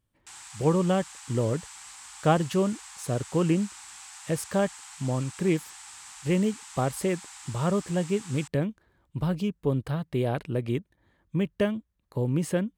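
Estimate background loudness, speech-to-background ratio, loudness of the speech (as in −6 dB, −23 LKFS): −43.0 LKFS, 14.5 dB, −28.5 LKFS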